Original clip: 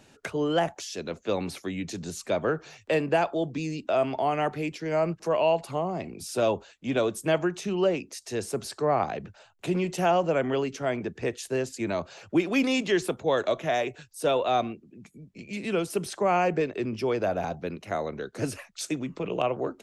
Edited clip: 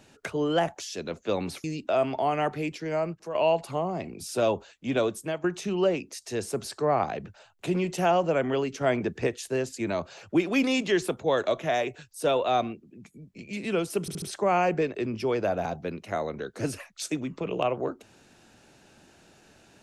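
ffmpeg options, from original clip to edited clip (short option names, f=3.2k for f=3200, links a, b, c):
-filter_complex "[0:a]asplit=9[a][b][c][d][e][f][g][h][i];[a]atrim=end=1.642[j];[b]atrim=start=3.638:end=5.35,asetpts=PTS-STARTPTS,afade=t=out:st=1.132:d=0.58:silence=0.298538[k];[c]atrim=start=5.35:end=7.44,asetpts=PTS-STARTPTS,afade=t=in:d=0.004:c=hsin:silence=0.298538,afade=t=out:st=1.7:d=0.39:silence=0.188365[l];[d]atrim=start=7.44:end=10.812,asetpts=PTS-STARTPTS,afade=t=in:d=0.004:c=hsin:silence=0.188365[m];[e]atrim=start=10.808:end=11.272,asetpts=PTS-STARTPTS,volume=3.5dB[n];[f]atrim=start=11.268:end=16.082[o];[g]atrim=start=16.008:end=16.082[p];[h]atrim=start=16.008:end=16.082[q];[i]atrim=start=16.008[r];[k][l][m]concat=n=3:v=0:a=1[s];[j][s]acrossfade=d=0.004:c1=hsin:c2=hsin[t];[t][n]acrossfade=d=0.004:c1=hsin:c2=hsin[u];[u][o]acrossfade=d=0.004:c1=hsin:c2=hsin[v];[v][p]acrossfade=d=0.004:c1=hsin:c2=hsin[w];[w][q]acrossfade=d=0.004:c1=hsin:c2=hsin[x];[x][r]acrossfade=d=0.004:c1=hsin:c2=hsin"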